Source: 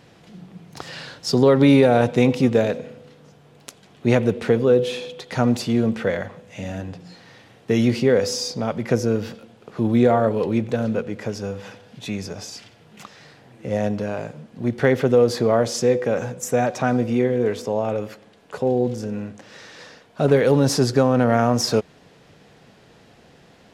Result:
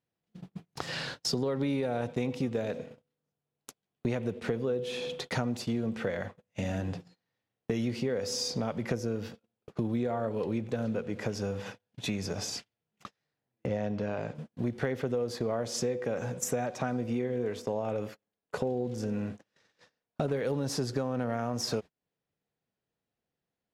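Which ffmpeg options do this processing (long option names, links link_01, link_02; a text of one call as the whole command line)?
ffmpeg -i in.wav -filter_complex "[0:a]asettb=1/sr,asplit=3[link_01][link_02][link_03];[link_01]atrim=end=13.664[link_04];[link_02]atrim=start=13.66:end=14.35,asetpts=PTS-STARTPTS,afade=type=in:duration=0.004:curve=qsin,afade=type=out:start_time=0.686:duration=0.004:curve=qsin,lowpass=5100[link_05];[link_03]atrim=start=14.346[link_06];[link_04][link_05]acrossfade=duration=0.004:curve1=hsin:curve2=qsin[link_07];[link_07][link_06]acrossfade=duration=0.004:curve1=qsin:curve2=hsin,acompressor=threshold=-29dB:ratio=6,lowshelf=frequency=75:gain=2.5,agate=range=-38dB:threshold=-38dB:ratio=16:detection=peak" out.wav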